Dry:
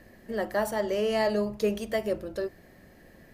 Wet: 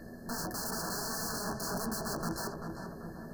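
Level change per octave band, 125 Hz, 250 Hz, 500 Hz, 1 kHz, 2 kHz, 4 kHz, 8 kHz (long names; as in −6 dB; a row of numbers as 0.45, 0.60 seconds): +0.5, −5.5, −14.5, −3.5, −5.0, −1.0, +9.0 decibels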